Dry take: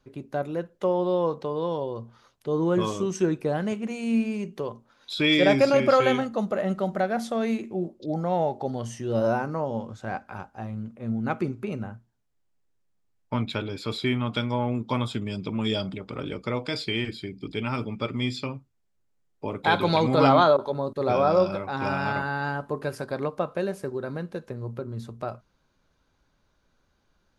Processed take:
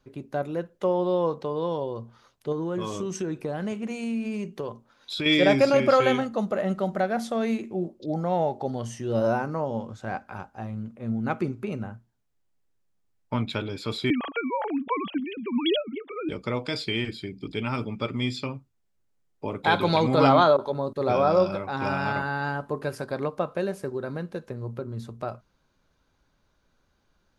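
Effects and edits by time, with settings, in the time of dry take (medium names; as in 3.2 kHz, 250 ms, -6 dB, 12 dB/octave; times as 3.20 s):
2.52–5.26 s: compression 4:1, threshold -26 dBFS
14.10–16.29 s: formants replaced by sine waves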